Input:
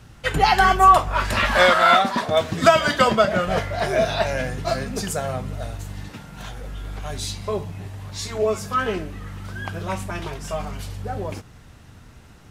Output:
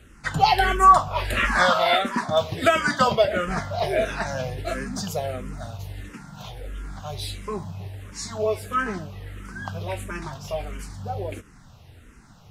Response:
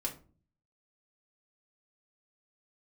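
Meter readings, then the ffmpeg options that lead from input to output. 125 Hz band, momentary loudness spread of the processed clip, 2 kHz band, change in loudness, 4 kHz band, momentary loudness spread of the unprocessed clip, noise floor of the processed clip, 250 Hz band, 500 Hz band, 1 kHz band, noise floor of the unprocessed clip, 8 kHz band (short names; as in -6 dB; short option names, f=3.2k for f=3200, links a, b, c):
-3.0 dB, 19 LU, -3.0 dB, -3.0 dB, -3.0 dB, 20 LU, -50 dBFS, -3.0 dB, -3.5 dB, -2.5 dB, -46 dBFS, -3.5 dB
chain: -filter_complex "[0:a]asplit=2[a][b];[b]afreqshift=-1.5[c];[a][c]amix=inputs=2:normalize=1"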